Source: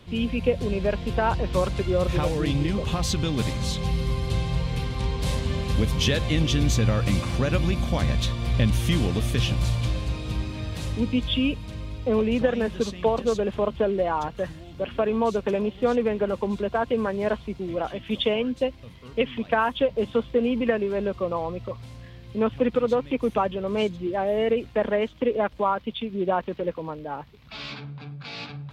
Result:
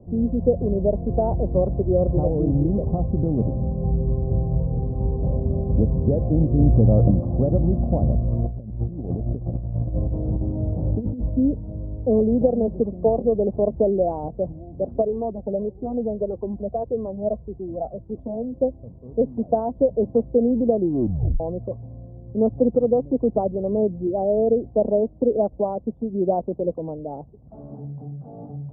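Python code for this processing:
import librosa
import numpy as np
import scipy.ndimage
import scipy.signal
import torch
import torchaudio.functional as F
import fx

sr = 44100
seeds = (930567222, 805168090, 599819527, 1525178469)

y = fx.env_flatten(x, sr, amount_pct=70, at=(6.58, 7.1), fade=0.02)
y = fx.over_compress(y, sr, threshold_db=-27.0, ratio=-0.5, at=(8.32, 11.3))
y = fx.comb_cascade(y, sr, direction='falling', hz=1.7, at=(15.01, 18.52), fade=0.02)
y = fx.edit(y, sr, fx.tape_stop(start_s=20.77, length_s=0.63), tone=tone)
y = scipy.signal.sosfilt(scipy.signal.ellip(4, 1.0, 70, 710.0, 'lowpass', fs=sr, output='sos'), y)
y = y * 10.0 ** (4.5 / 20.0)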